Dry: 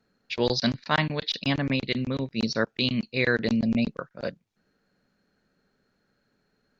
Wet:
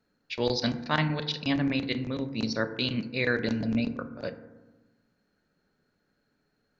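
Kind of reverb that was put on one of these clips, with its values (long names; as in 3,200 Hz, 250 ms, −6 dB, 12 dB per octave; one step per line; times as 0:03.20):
feedback delay network reverb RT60 1.2 s, low-frequency decay 1.35×, high-frequency decay 0.3×, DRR 8.5 dB
level −3.5 dB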